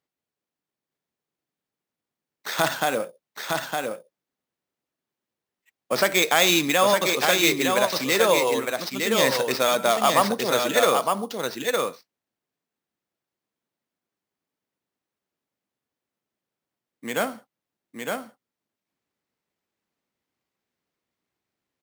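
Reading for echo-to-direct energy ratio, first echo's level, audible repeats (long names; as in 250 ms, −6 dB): −4.0 dB, −4.0 dB, 1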